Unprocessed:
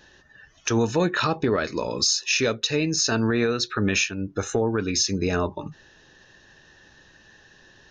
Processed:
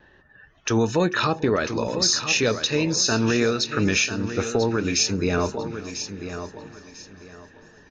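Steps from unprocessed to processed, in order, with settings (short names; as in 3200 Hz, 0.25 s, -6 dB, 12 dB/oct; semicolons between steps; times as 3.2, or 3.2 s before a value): low-pass opened by the level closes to 1900 Hz, open at -21.5 dBFS; vibrato 2.2 Hz 25 cents; on a send: feedback echo 0.995 s, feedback 25%, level -10 dB; on the sum: warbling echo 0.442 s, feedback 61%, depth 69 cents, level -20.5 dB; gain +1 dB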